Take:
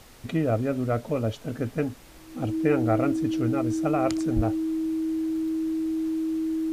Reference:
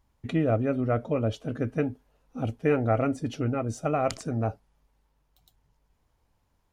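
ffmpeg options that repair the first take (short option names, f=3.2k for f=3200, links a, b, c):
-filter_complex "[0:a]bandreject=f=320:w=30,asplit=3[a][b][c];[a]afade=t=out:st=4.35:d=0.02[d];[b]highpass=f=140:w=0.5412,highpass=f=140:w=1.3066,afade=t=in:st=4.35:d=0.02,afade=t=out:st=4.47:d=0.02[e];[c]afade=t=in:st=4.47:d=0.02[f];[d][e][f]amix=inputs=3:normalize=0,afftdn=nr=25:nf=-46"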